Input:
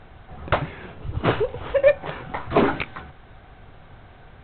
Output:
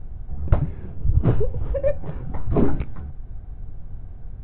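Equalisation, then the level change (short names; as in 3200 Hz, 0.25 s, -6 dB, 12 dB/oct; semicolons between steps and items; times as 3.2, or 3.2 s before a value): tilt -4.5 dB/oct; low shelf 420 Hz +6.5 dB; -12.5 dB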